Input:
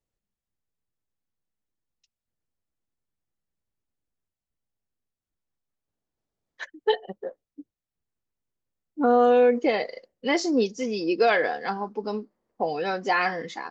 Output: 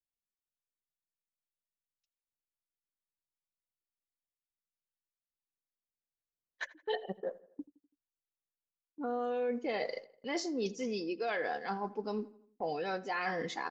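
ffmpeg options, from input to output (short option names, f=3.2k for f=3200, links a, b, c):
-filter_complex "[0:a]agate=range=-20dB:threshold=-43dB:ratio=16:detection=peak,areverse,acompressor=threshold=-33dB:ratio=6,areverse,asplit=2[a][b];[b]adelay=83,lowpass=f=3.6k:p=1,volume=-19.5dB,asplit=2[c][d];[d]adelay=83,lowpass=f=3.6k:p=1,volume=0.5,asplit=2[e][f];[f]adelay=83,lowpass=f=3.6k:p=1,volume=0.5,asplit=2[g][h];[h]adelay=83,lowpass=f=3.6k:p=1,volume=0.5[i];[a][c][e][g][i]amix=inputs=5:normalize=0"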